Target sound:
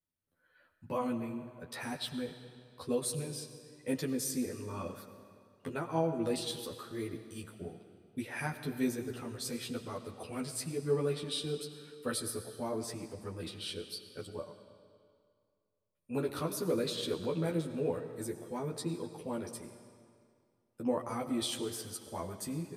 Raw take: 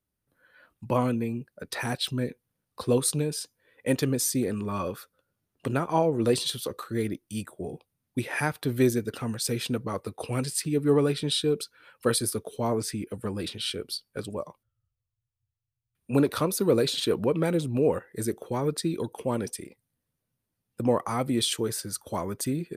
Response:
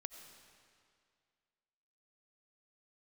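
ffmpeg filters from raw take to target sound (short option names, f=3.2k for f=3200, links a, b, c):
-filter_complex "[0:a]flanger=delay=5.7:depth=8.5:regen=-40:speed=1:shape=triangular,asplit=2[a][b];[1:a]atrim=start_sample=2205,adelay=12[c];[b][c]afir=irnorm=-1:irlink=0,volume=4.5dB[d];[a][d]amix=inputs=2:normalize=0,volume=-8.5dB"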